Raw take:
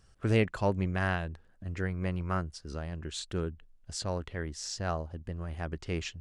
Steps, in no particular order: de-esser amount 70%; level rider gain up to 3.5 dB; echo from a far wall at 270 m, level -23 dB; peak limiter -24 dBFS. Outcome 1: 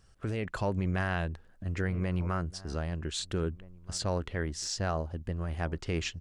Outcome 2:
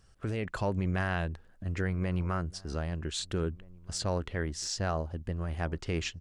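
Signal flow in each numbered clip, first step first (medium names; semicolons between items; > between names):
echo from a far wall > peak limiter > de-esser > level rider; peak limiter > de-esser > level rider > echo from a far wall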